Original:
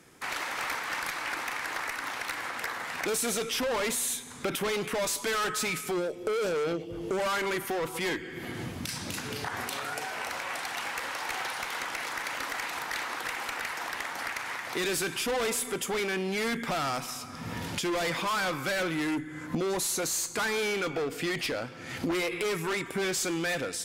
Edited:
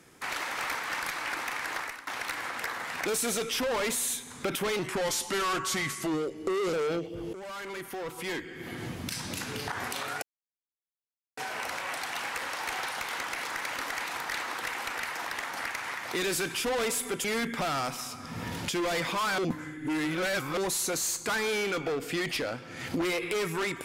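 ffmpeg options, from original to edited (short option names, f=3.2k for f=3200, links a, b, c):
-filter_complex "[0:a]asplit=9[a][b][c][d][e][f][g][h][i];[a]atrim=end=2.07,asetpts=PTS-STARTPTS,afade=t=out:st=1.77:d=0.3:silence=0.133352[j];[b]atrim=start=2.07:end=4.794,asetpts=PTS-STARTPTS,afade=t=in:d=0.004:c=hsin:silence=0.133352[k];[c]atrim=start=4.79:end=6.5,asetpts=PTS-STARTPTS,asetrate=38808,aresample=44100,atrim=end_sample=85694,asetpts=PTS-STARTPTS[l];[d]atrim=start=6.496:end=7.1,asetpts=PTS-STARTPTS,afade=t=out:st=0.6:d=0.004:c=hsin:silence=0.199526[m];[e]atrim=start=7.1:end=9.99,asetpts=PTS-STARTPTS,afade=t=in:d=1.69:silence=0.199526,afade=t=out:st=2.886:d=0.004:c=hsin,apad=pad_dur=1.15[n];[f]atrim=start=9.99:end=15.862,asetpts=PTS-STARTPTS,afade=t=in:d=0.004:c=hsin[o];[g]atrim=start=16.338:end=18.482[p];[h]atrim=start=18.478:end=19.672,asetpts=PTS-STARTPTS,areverse[q];[i]atrim=start=19.668[r];[j][k]concat=n=2:v=0:a=1[s];[s][l]acrossfade=d=0.004:c1=hsin:c2=hsin[t];[m][n][o]concat=n=3:v=0:a=1[u];[t][u]acrossfade=d=0.004:c1=hsin:c2=hsin[v];[v][p]acrossfade=d=0.004:c1=hsin:c2=hsin[w];[w][q]acrossfade=d=0.004:c1=hsin:c2=hsin[x];[x][r]acrossfade=d=0.004:c1=hsin:c2=hsin"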